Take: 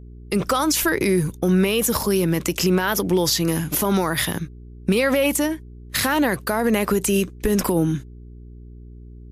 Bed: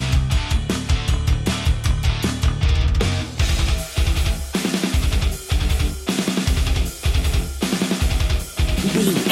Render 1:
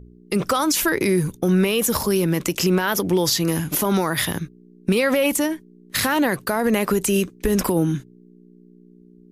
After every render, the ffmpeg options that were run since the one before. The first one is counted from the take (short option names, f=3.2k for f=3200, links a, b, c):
-af "bandreject=f=60:t=h:w=4,bandreject=f=120:t=h:w=4"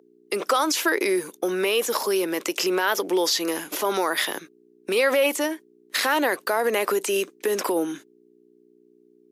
-filter_complex "[0:a]acrossover=split=6400[a][b];[b]acompressor=threshold=-31dB:ratio=4:attack=1:release=60[c];[a][c]amix=inputs=2:normalize=0,highpass=f=350:w=0.5412,highpass=f=350:w=1.3066"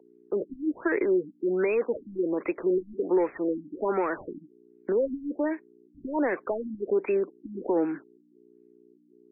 -filter_complex "[0:a]acrossover=split=510|5900[a][b][c];[b]asoftclip=type=tanh:threshold=-27.5dB[d];[a][d][c]amix=inputs=3:normalize=0,afftfilt=real='re*lt(b*sr/1024,310*pow(2700/310,0.5+0.5*sin(2*PI*1.3*pts/sr)))':imag='im*lt(b*sr/1024,310*pow(2700/310,0.5+0.5*sin(2*PI*1.3*pts/sr)))':win_size=1024:overlap=0.75"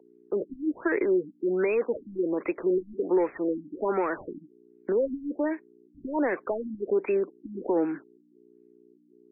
-af anull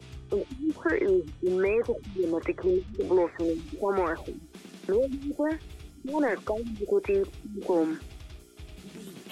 -filter_complex "[1:a]volume=-26dB[a];[0:a][a]amix=inputs=2:normalize=0"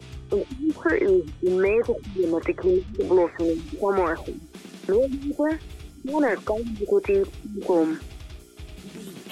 -af "volume=4.5dB"